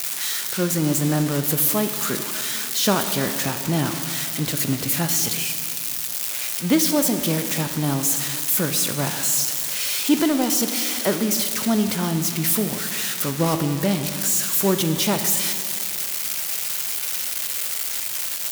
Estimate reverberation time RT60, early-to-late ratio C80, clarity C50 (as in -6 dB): 2.6 s, 9.0 dB, 8.5 dB